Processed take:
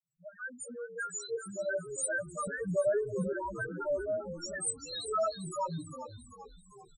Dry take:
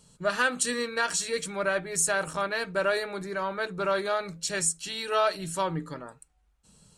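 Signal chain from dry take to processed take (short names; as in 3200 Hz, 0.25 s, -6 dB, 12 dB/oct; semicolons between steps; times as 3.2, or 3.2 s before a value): opening faded in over 1.51 s; high shelf 2900 Hz +10 dB; loudest bins only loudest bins 1; 2.47–3.33 tilt -4.5 dB/oct; frequency-shifting echo 0.393 s, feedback 53%, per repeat -62 Hz, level -12 dB; gain +1 dB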